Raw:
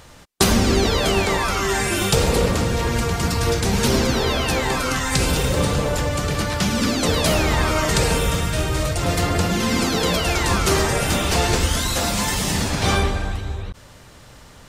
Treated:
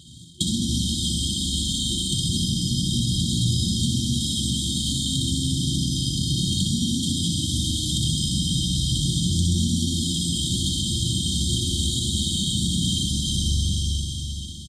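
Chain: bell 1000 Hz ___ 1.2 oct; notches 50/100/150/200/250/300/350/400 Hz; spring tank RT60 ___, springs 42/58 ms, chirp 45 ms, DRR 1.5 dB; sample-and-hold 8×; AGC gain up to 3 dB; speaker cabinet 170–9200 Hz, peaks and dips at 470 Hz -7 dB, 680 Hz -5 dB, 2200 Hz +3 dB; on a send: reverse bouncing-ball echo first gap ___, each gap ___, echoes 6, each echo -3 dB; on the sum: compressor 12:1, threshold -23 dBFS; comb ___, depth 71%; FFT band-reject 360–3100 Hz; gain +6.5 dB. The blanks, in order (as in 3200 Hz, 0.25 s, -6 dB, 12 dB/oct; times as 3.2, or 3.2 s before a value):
-9 dB, 3.9 s, 60 ms, 1.15×, 1.6 ms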